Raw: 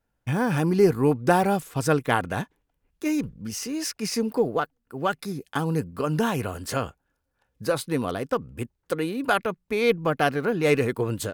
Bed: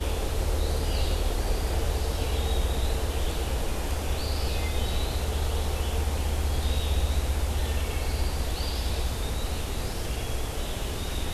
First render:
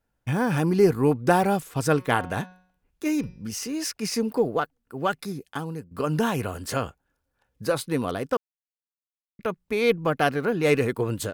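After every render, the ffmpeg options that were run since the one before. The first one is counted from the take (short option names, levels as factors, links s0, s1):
-filter_complex "[0:a]asettb=1/sr,asplit=3[s0][s1][s2];[s0]atrim=end=1.894[s3];[s1]atrim=start=1.89:end=3.49,asetpts=PTS-STARTPTS,afade=t=in:d=0.004:c=qsin,afade=t=out:st=1.596:d=0.004:c=qsin,bandreject=f=183.2:t=h:w=4,bandreject=f=366.4:t=h:w=4,bandreject=f=549.6:t=h:w=4,bandreject=f=732.8:t=h:w=4,bandreject=f=916:t=h:w=4,bandreject=f=1099.2:t=h:w=4,bandreject=f=1282.4:t=h:w=4,bandreject=f=1465.6:t=h:w=4,bandreject=f=1648.8:t=h:w=4,bandreject=f=1832:t=h:w=4,bandreject=f=2015.2:t=h:w=4,bandreject=f=2198.4:t=h:w=4,bandreject=f=2381.6:t=h:w=4,bandreject=f=2564.8:t=h:w=4,bandreject=f=2748:t=h:w=4,bandreject=f=2931.2:t=h:w=4,bandreject=f=3114.4:t=h:w=4,bandreject=f=3297.6:t=h:w=4,bandreject=f=3480.8:t=h:w=4,bandreject=f=3664:t=h:w=4,bandreject=f=3847.2:t=h:w=4,bandreject=f=4030.4:t=h:w=4,bandreject=f=4213.6:t=h:w=4,bandreject=f=4396.8:t=h:w=4,bandreject=f=4580:t=h:w=4,bandreject=f=4763.2:t=h:w=4,bandreject=f=4946.4:t=h:w=4,bandreject=f=5129.6:t=h:w=4,bandreject=f=5312.8:t=h:w=4,bandreject=f=5496:t=h:w=4,bandreject=f=5679.2:t=h:w=4,bandreject=f=5862.4:t=h:w=4,bandreject=f=6045.6:t=h:w=4[s4];[s2]atrim=start=3.486[s5];[s3][s4]acrossfade=d=0.004:c1=hsin:c2=qsin[s6];[s6][s5]acrossfade=d=0.004:c1=qsin:c2=hsin,asplit=4[s7][s8][s9][s10];[s7]atrim=end=5.91,asetpts=PTS-STARTPTS,afade=t=out:st=5.23:d=0.68:silence=0.158489[s11];[s8]atrim=start=5.91:end=8.37,asetpts=PTS-STARTPTS,afade=t=in:d=0.004:c=hsin:silence=0.158489,afade=t=out:st=2.456:d=0.004:c=hsin[s12];[s9]atrim=start=8.37:end=9.39,asetpts=PTS-STARTPTS,volume=0[s13];[s10]atrim=start=9.39,asetpts=PTS-STARTPTS,afade=t=in:d=0.004:c=hsin[s14];[s11][s12][s13][s14]concat=n=4:v=0:a=1"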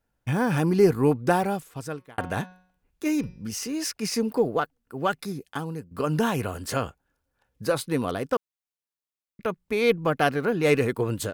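-filter_complex "[0:a]asplit=2[s0][s1];[s0]atrim=end=2.18,asetpts=PTS-STARTPTS,afade=t=out:st=1.08:d=1.1[s2];[s1]atrim=start=2.18,asetpts=PTS-STARTPTS,afade=t=in:d=0.004:c=hsin[s3];[s2][s3]concat=n=2:v=0:a=1"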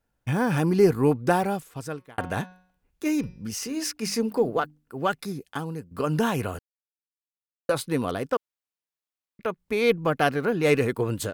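-filter_complex "[0:a]asettb=1/sr,asplit=3[s0][s1][s2];[s0]atrim=end=3.674[s3];[s1]atrim=start=3.67:end=5.02,asetpts=PTS-STARTPTS,afade=t=in:d=0.004:c=qsin,afade=t=out:st=1.346:d=0.004:c=qsin,bandreject=f=50:t=h:w=6,bandreject=f=100:t=h:w=6,bandreject=f=150:t=h:w=6,bandreject=f=200:t=h:w=6,bandreject=f=250:t=h:w=6,bandreject=f=300:t=h:w=6[s4];[s2]atrim=start=5.016[s5];[s3][s4]acrossfade=d=0.004:c1=hsin:c2=qsin[s6];[s6][s5]acrossfade=d=0.004:c1=qsin:c2=hsin,asettb=1/sr,asplit=3[s7][s8][s9];[s7]atrim=end=8.294[s10];[s8]atrim=start=8.29:end=9.59,asetpts=PTS-STARTPTS,afade=t=in:d=0.004:c=qsin,afade=t=out:st=1.296:d=0.004:c=qsin,bass=f=250:g=-5,treble=f=4000:g=-3[s11];[s9]atrim=start=9.586[s12];[s10][s11]acrossfade=d=0.004:c1=hsin:c2=qsin[s13];[s13][s12]acrossfade=d=0.004:c1=qsin:c2=hsin,asplit=3[s14][s15][s16];[s14]atrim=end=6.59,asetpts=PTS-STARTPTS,afade=t=out:st=6.586:d=0.004:c=hsin[s17];[s15]atrim=start=6.59:end=7.69,asetpts=PTS-STARTPTS,volume=0[s18];[s16]atrim=start=7.69,asetpts=PTS-STARTPTS,afade=t=in:d=0.004:c=hsin[s19];[s17][s18][s19]concat=n=3:v=0:a=1"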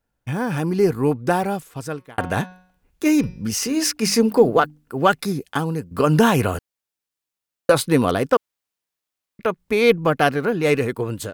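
-af "dynaudnorm=f=670:g=5:m=3.76"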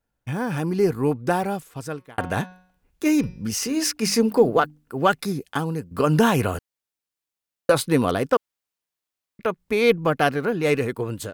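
-af "volume=0.75"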